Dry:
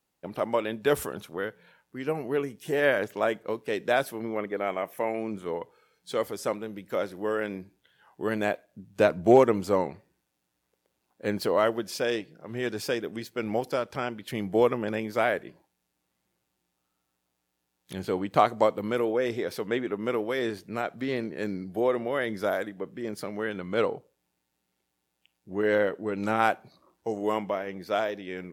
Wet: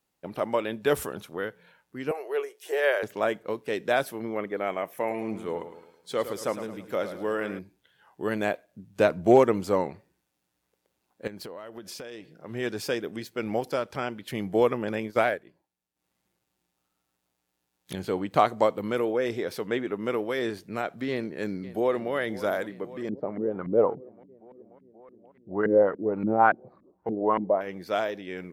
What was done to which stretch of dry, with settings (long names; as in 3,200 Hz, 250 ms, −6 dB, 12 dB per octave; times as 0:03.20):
0:02.11–0:03.03: Chebyshev high-pass filter 380 Hz, order 5
0:04.97–0:07.59: repeating echo 108 ms, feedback 45%, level −10.5 dB
0:11.27–0:12.33: downward compressor 16 to 1, threshold −36 dBFS
0:15.03–0:17.96: transient designer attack +4 dB, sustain −11 dB
0:21.10–0:22.13: delay throw 530 ms, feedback 75%, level −16.5 dB
0:23.09–0:27.61: auto-filter low-pass saw up 3.5 Hz 220–1,800 Hz